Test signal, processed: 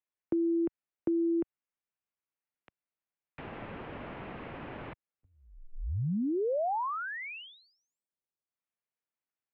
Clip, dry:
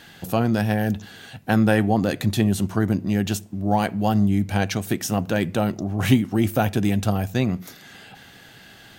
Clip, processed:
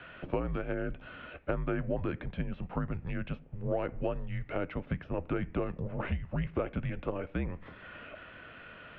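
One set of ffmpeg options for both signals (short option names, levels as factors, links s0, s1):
-filter_complex "[0:a]acrossover=split=160|1100[s0][s1][s2];[s0]acompressor=threshold=0.02:ratio=4[s3];[s1]acompressor=threshold=0.0355:ratio=4[s4];[s2]acompressor=threshold=0.00631:ratio=4[s5];[s3][s4][s5]amix=inputs=3:normalize=0,highpass=f=260:t=q:w=0.5412,highpass=f=260:t=q:w=1.307,lowpass=f=2900:t=q:w=0.5176,lowpass=f=2900:t=q:w=0.7071,lowpass=f=2900:t=q:w=1.932,afreqshift=-180"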